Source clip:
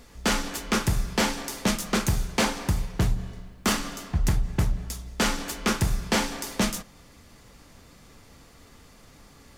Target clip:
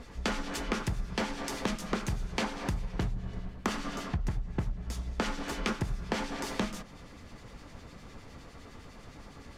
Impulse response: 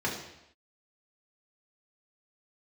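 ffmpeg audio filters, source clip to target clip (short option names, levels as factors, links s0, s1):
-filter_complex "[0:a]acrossover=split=1900[s0][s1];[s0]aeval=exprs='val(0)*(1-0.5/2+0.5/2*cos(2*PI*9.8*n/s))':c=same[s2];[s1]aeval=exprs='val(0)*(1-0.5/2-0.5/2*cos(2*PI*9.8*n/s))':c=same[s3];[s2][s3]amix=inputs=2:normalize=0,aemphasis=mode=reproduction:type=50fm,acompressor=threshold=0.0178:ratio=6,volume=1.88"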